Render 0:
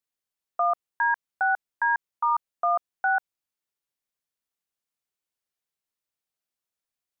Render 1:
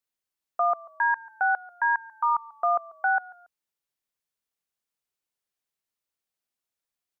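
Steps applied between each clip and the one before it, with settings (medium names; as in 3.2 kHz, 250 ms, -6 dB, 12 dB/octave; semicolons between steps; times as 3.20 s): frequency-shifting echo 140 ms, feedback 34%, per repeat -31 Hz, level -22 dB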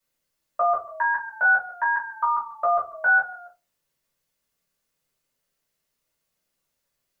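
dynamic bell 760 Hz, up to -6 dB, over -37 dBFS, Q 1.5; in parallel at +2 dB: peak limiter -27 dBFS, peak gain reduction 10 dB; on the sum: reverberation RT60 0.25 s, pre-delay 3 ms, DRR -8 dB; trim -6 dB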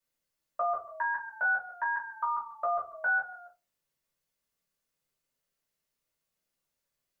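compression 1.5:1, threshold -23 dBFS, peak gain reduction 3 dB; trim -6.5 dB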